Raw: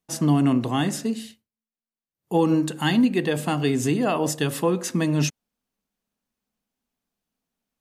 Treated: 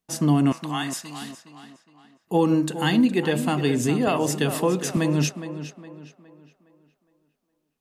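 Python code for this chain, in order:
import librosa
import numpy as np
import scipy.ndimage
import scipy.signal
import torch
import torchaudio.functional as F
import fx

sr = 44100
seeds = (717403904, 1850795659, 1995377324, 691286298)

y = fx.cheby2_highpass(x, sr, hz=400.0, order=4, stop_db=40, at=(0.52, 1.22))
y = fx.echo_tape(y, sr, ms=413, feedback_pct=42, wet_db=-10, lp_hz=3900.0, drive_db=9.0, wow_cents=12)
y = fx.band_squash(y, sr, depth_pct=40, at=(4.07, 4.97))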